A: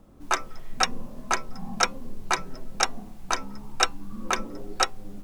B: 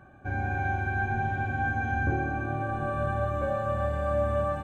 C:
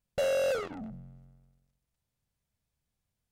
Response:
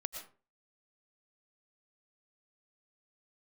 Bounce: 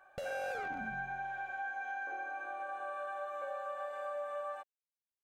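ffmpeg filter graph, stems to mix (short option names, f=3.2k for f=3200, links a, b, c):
-filter_complex "[1:a]volume=-4.5dB[a];[2:a]acompressor=threshold=-35dB:ratio=4,volume=-5.5dB[b];[a]highpass=f=570:w=0.5412,highpass=f=570:w=1.3066,acompressor=threshold=-39dB:ratio=2.5,volume=0dB[c];[b][c]amix=inputs=2:normalize=0"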